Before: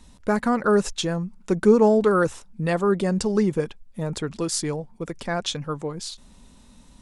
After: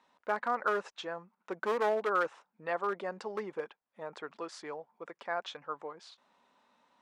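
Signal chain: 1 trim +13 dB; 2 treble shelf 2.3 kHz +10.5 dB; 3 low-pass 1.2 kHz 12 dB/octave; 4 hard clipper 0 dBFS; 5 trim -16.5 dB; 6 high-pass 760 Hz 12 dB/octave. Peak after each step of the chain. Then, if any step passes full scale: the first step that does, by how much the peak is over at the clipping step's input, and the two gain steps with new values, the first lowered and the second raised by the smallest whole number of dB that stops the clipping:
+8.0 dBFS, +9.0 dBFS, +8.0 dBFS, 0.0 dBFS, -16.5 dBFS, -18.0 dBFS; step 1, 8.0 dB; step 1 +5 dB, step 5 -8.5 dB

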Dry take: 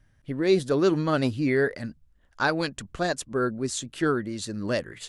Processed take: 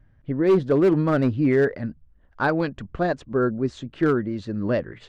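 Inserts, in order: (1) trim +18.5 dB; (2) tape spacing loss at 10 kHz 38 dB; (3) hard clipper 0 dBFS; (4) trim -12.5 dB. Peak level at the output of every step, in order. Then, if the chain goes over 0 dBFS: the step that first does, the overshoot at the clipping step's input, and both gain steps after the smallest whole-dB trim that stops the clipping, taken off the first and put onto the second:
+8.5 dBFS, +6.0 dBFS, 0.0 dBFS, -12.5 dBFS; step 1, 6.0 dB; step 1 +12.5 dB, step 4 -6.5 dB

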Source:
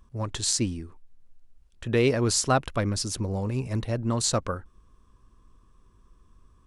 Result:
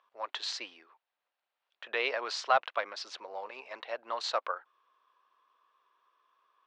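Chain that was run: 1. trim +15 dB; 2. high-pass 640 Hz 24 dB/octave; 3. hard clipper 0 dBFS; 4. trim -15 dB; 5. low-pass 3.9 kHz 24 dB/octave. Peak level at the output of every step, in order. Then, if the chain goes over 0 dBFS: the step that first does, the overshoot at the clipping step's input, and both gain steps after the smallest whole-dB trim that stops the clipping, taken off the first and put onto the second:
+7.5 dBFS, +7.5 dBFS, 0.0 dBFS, -15.0 dBFS, -14.0 dBFS; step 1, 7.5 dB; step 1 +7 dB, step 4 -7 dB

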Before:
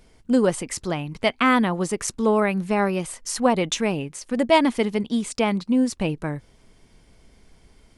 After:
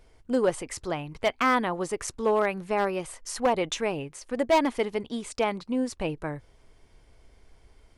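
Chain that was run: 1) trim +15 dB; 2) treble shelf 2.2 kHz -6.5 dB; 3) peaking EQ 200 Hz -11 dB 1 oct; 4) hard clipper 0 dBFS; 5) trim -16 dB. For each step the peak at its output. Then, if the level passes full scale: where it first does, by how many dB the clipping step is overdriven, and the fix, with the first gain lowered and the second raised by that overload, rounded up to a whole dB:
+9.5 dBFS, +9.0 dBFS, +6.5 dBFS, 0.0 dBFS, -16.0 dBFS; step 1, 6.5 dB; step 1 +8 dB, step 5 -9 dB

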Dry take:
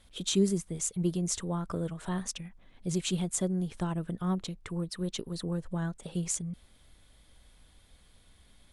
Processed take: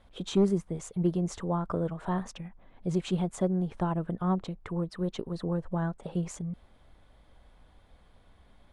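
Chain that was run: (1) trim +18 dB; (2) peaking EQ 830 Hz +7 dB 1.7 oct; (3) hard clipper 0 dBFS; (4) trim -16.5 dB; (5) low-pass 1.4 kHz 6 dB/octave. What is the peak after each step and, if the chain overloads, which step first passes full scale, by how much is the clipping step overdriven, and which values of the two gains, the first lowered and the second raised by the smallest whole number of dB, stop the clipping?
+4.5 dBFS, +4.5 dBFS, 0.0 dBFS, -16.5 dBFS, -16.5 dBFS; step 1, 4.5 dB; step 1 +13 dB, step 4 -11.5 dB

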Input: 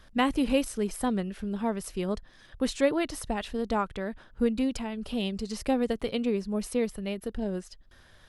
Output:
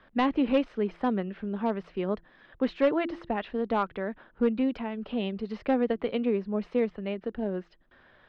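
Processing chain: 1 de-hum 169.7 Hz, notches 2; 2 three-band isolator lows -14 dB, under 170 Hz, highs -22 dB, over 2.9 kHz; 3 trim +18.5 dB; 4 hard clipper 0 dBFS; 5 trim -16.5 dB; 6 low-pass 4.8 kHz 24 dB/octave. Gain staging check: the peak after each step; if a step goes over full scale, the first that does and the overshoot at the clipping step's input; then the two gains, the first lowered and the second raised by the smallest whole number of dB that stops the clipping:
-11.0 dBFS, -11.0 dBFS, +7.5 dBFS, 0.0 dBFS, -16.5 dBFS, -15.5 dBFS; step 3, 7.5 dB; step 3 +10.5 dB, step 5 -8.5 dB

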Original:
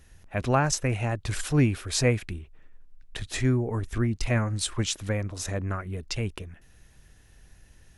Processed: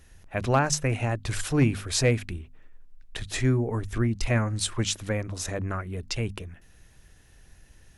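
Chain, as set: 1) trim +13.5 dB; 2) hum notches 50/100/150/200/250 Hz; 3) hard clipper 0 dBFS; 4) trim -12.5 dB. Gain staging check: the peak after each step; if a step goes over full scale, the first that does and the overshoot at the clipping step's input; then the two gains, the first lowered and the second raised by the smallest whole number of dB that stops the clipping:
+3.5 dBFS, +3.5 dBFS, 0.0 dBFS, -12.5 dBFS; step 1, 3.5 dB; step 1 +9.5 dB, step 4 -8.5 dB

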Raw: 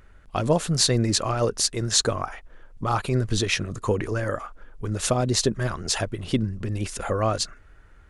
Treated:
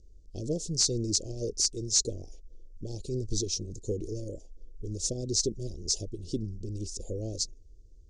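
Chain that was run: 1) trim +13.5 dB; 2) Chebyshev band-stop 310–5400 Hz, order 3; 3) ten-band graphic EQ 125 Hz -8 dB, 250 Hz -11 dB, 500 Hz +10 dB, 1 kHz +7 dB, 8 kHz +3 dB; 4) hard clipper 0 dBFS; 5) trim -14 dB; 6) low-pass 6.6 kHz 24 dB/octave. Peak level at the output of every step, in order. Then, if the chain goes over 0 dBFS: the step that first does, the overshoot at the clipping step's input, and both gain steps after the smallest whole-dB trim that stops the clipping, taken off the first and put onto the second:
+10.0 dBFS, +6.5 dBFS, +9.0 dBFS, 0.0 dBFS, -14.0 dBFS, -13.5 dBFS; step 1, 9.0 dB; step 1 +4.5 dB, step 5 -5 dB

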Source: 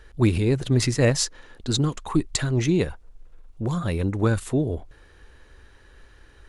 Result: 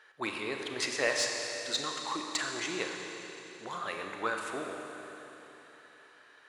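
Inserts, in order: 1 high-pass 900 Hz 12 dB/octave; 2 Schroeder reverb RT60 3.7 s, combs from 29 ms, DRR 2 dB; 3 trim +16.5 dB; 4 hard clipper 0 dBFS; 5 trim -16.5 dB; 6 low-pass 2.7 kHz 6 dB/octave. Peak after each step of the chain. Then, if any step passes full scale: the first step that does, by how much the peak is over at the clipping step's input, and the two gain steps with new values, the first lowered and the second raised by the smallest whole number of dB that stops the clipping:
-10.5 dBFS, -10.0 dBFS, +6.5 dBFS, 0.0 dBFS, -16.5 dBFS, -17.0 dBFS; step 3, 6.5 dB; step 3 +9.5 dB, step 5 -9.5 dB

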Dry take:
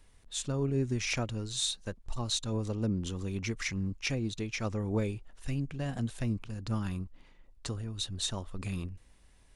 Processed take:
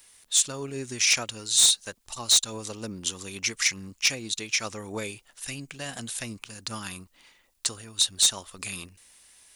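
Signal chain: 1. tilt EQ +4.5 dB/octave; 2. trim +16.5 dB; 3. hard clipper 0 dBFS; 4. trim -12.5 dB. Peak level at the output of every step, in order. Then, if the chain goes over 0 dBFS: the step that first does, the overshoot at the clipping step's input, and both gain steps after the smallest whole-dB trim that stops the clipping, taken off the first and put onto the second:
-8.5 dBFS, +8.0 dBFS, 0.0 dBFS, -12.5 dBFS; step 2, 8.0 dB; step 2 +8.5 dB, step 4 -4.5 dB

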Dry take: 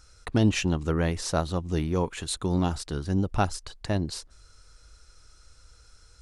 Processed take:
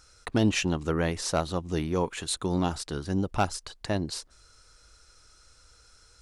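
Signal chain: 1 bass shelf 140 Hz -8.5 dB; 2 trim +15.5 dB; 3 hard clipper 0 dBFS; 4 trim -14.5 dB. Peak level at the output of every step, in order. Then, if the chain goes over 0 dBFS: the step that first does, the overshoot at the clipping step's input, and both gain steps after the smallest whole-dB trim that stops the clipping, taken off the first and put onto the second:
-10.5 dBFS, +5.0 dBFS, 0.0 dBFS, -14.5 dBFS; step 2, 5.0 dB; step 2 +10.5 dB, step 4 -9.5 dB

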